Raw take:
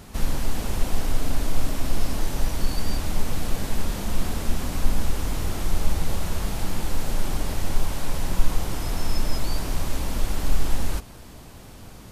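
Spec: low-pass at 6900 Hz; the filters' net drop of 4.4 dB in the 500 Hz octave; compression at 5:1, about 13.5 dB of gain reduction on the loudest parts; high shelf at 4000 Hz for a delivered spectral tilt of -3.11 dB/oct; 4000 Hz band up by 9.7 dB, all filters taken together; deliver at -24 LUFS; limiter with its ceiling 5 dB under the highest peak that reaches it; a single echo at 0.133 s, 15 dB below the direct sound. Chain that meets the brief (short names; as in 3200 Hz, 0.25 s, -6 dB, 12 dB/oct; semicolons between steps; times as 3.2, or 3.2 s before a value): LPF 6900 Hz; bell 500 Hz -6 dB; high shelf 4000 Hz +6 dB; bell 4000 Hz +9 dB; compressor 5:1, threshold -25 dBFS; limiter -21.5 dBFS; echo 0.133 s -15 dB; gain +12.5 dB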